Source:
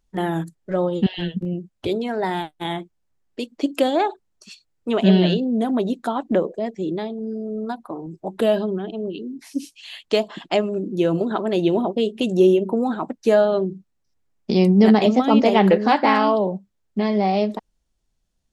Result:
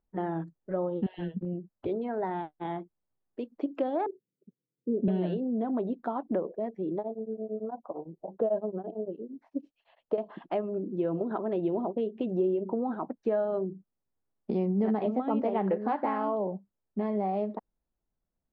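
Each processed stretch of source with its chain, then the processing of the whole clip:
0:04.06–0:05.08: Chebyshev band-pass filter 120–520 Hz, order 5 + low-shelf EQ 290 Hz +8 dB
0:06.98–0:10.18: drawn EQ curve 370 Hz 0 dB, 540 Hz +10 dB, 2,200 Hz −9 dB + tremolo along a rectified sine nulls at 8.9 Hz
whole clip: low-shelf EQ 140 Hz −8 dB; downward compressor 2.5 to 1, threshold −21 dBFS; low-pass filter 1,200 Hz 12 dB per octave; level −5.5 dB

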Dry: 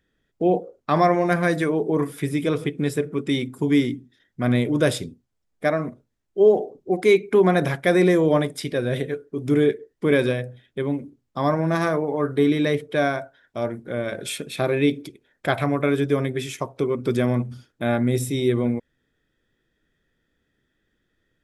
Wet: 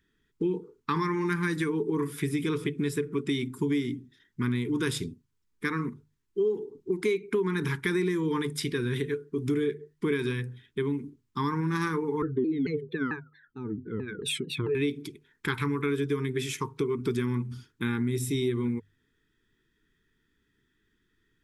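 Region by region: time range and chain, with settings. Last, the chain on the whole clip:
0:12.22–0:14.75: expanding power law on the bin magnitudes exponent 1.8 + pitch modulation by a square or saw wave saw down 4.5 Hz, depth 250 cents
whole clip: elliptic band-stop filter 440–900 Hz, stop band 40 dB; mains-hum notches 50/100/150 Hz; downward compressor 5 to 1, threshold −25 dBFS

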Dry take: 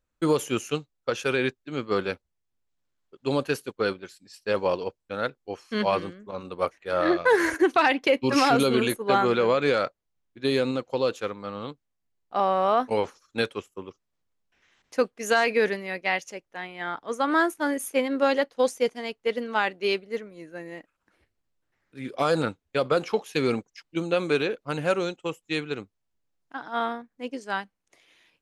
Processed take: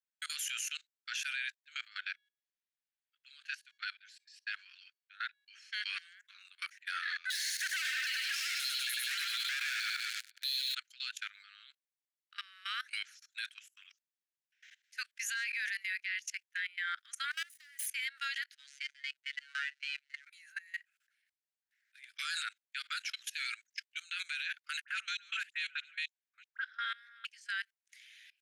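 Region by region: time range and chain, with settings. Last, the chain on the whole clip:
0:01.88–0:05.74: high-frequency loss of the air 83 metres + tuned comb filter 560 Hz, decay 0.5 s, mix 30%
0:07.30–0:10.75: auto-filter high-pass square 1.6 Hz 610–4,300 Hz + feedback echo with a high-pass in the loop 99 ms, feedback 61%, high-pass 570 Hz, level −6 dB + leveller curve on the samples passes 5
0:17.31–0:17.87: lower of the sound and its delayed copy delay 0.99 ms + downward compressor 10 to 1, threshold −32 dBFS + parametric band 510 Hz −10.5 dB 3 octaves
0:18.55–0:20.27: variable-slope delta modulation 64 kbit/s + high-frequency loss of the air 120 metres + phases set to zero 141 Hz
0:24.81–0:27.25: delay that plays each chunk backwards 314 ms, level −7.5 dB + low-pass filter 3,000 Hz 6 dB per octave + all-pass dispersion highs, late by 74 ms, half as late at 1,200 Hz
whole clip: Butterworth high-pass 1,500 Hz 72 dB per octave; output level in coarse steps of 22 dB; brickwall limiter −35 dBFS; level +8 dB

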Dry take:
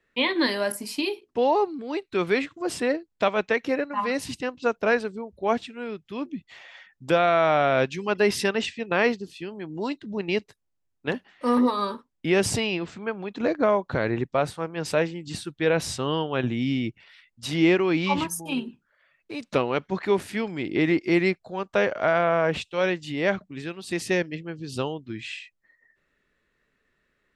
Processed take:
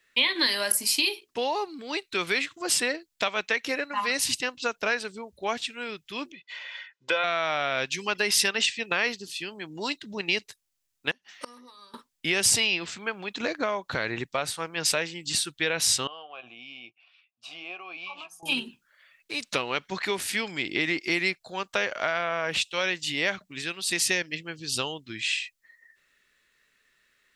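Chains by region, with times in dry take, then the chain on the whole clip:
0:06.32–0:07.24: band-pass filter 330–3,300 Hz + comb filter 2 ms, depth 68%
0:11.11–0:11.94: parametric band 5,900 Hz +10 dB 0.36 octaves + gate with flip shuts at −21 dBFS, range −27 dB
0:16.07–0:18.43: formant filter a + downward compressor 2 to 1, threshold −41 dBFS + double-tracking delay 17 ms −12.5 dB
whole clip: tilt shelving filter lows −5.5 dB; downward compressor 3 to 1, threshold −25 dBFS; high-shelf EQ 2,300 Hz +10 dB; level −1.5 dB

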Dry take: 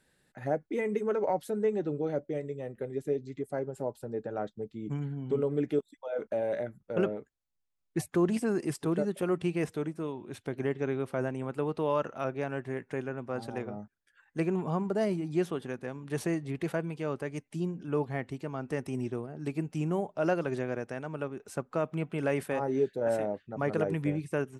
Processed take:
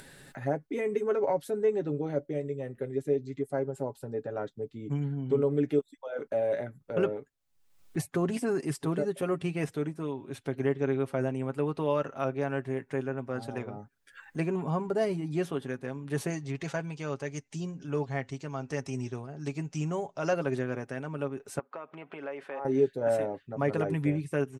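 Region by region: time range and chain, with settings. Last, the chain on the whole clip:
0:16.30–0:20.33: low-pass with resonance 6,400 Hz, resonance Q 3.1 + parametric band 280 Hz −4.5 dB 1.6 octaves
0:21.59–0:22.65: downward compressor 4 to 1, threshold −34 dBFS + band-pass filter 450–2,800 Hz
whole clip: comb filter 7.3 ms, depth 49%; upward compression, threshold −37 dBFS

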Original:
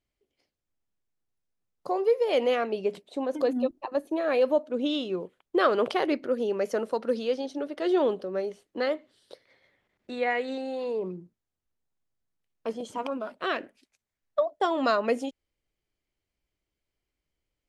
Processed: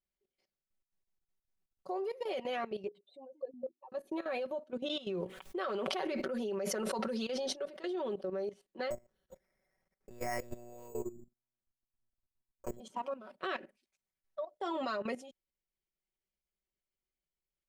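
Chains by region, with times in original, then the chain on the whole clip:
0:02.87–0:03.92: expanding power law on the bin magnitudes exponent 2.1 + high-pass filter 1,000 Hz 6 dB per octave
0:04.96–0:07.95: parametric band 300 Hz −4 dB 0.89 octaves + level that may fall only so fast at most 28 dB per second
0:08.90–0:12.80: low-pass filter 1,800 Hz + one-pitch LPC vocoder at 8 kHz 120 Hz + bad sample-rate conversion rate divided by 6×, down none, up hold
whole clip: comb filter 5.3 ms, depth 76%; output level in coarse steps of 15 dB; level −5.5 dB

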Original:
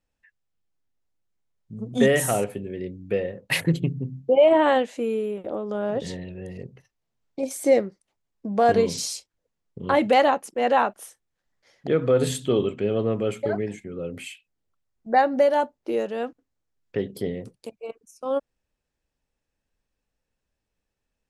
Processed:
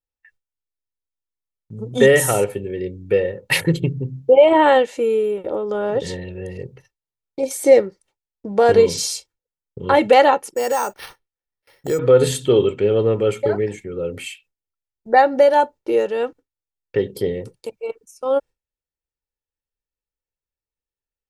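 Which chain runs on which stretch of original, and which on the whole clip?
0:10.55–0:11.99: downward compressor 3 to 1, threshold −24 dBFS + bad sample-rate conversion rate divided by 6×, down none, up hold
whole clip: noise gate with hold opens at −50 dBFS; comb filter 2.2 ms, depth 49%; level +5 dB

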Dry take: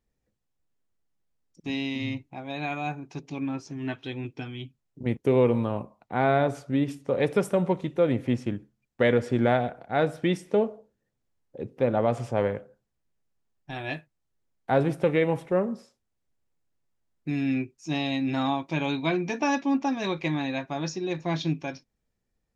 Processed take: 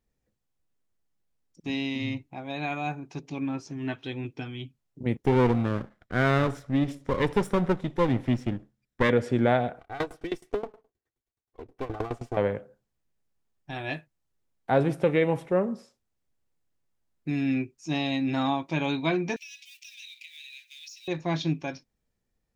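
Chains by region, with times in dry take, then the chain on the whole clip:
0:05.22–0:09.10: lower of the sound and its delayed copy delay 0.54 ms + high-shelf EQ 7,900 Hz −5 dB
0:09.79–0:12.37: lower of the sound and its delayed copy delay 2.6 ms + tremolo with a ramp in dB decaying 9.5 Hz, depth 22 dB
0:19.36–0:21.08: mu-law and A-law mismatch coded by mu + Butterworth high-pass 2,400 Hz 48 dB per octave + downward compressor 5 to 1, threshold −42 dBFS
whole clip: no processing

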